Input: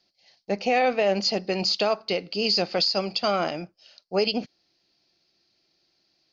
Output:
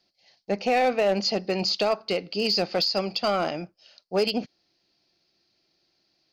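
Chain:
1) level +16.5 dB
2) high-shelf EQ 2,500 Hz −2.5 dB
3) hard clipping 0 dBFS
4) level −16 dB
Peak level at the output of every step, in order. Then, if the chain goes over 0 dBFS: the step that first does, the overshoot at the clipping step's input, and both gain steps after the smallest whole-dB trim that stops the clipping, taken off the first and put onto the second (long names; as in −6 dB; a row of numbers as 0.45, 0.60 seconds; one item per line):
+6.0, +5.0, 0.0, −16.0 dBFS
step 1, 5.0 dB
step 1 +11.5 dB, step 4 −11 dB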